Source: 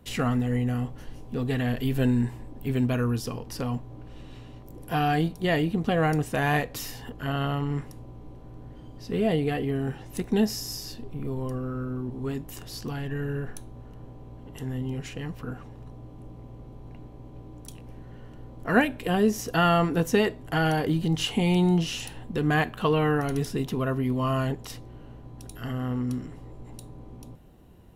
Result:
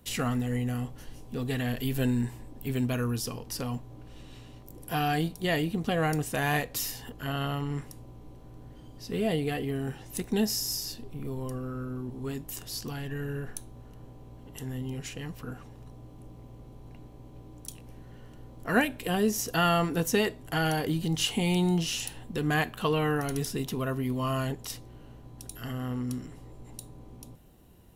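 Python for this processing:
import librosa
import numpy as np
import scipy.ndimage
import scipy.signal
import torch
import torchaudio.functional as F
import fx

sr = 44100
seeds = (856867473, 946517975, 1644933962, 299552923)

y = fx.high_shelf(x, sr, hz=3900.0, db=10.5)
y = y * 10.0 ** (-4.0 / 20.0)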